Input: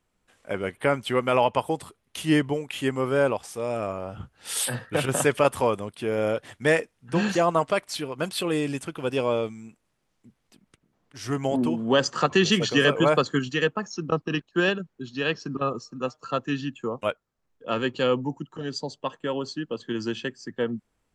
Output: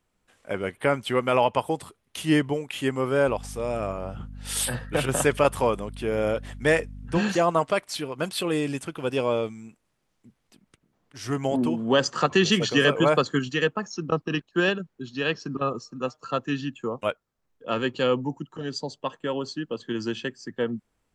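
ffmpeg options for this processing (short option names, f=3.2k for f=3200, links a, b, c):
-filter_complex "[0:a]asettb=1/sr,asplit=3[a][b][c];[a]atrim=end=3.274[d];[b]atrim=start=3.27:end=7.18,asetpts=PTS-STARTPTS,afade=t=in:d=0.004:c=qsin,afade=t=out:st=3.906:d=0.004:c=qsin,aeval=exprs='val(0)+0.0126*(sin(2*PI*50*n/s)+sin(2*PI*2*50*n/s)/2+sin(2*PI*3*50*n/s)/3+sin(2*PI*4*50*n/s)/4+sin(2*PI*5*50*n/s)/5)':c=same[e];[c]atrim=start=7.176[f];[d][e]acrossfade=d=0.004:c1=hsin:c2=qsin[g];[g][f]acrossfade=d=0.004:c1=qsin:c2=hsin"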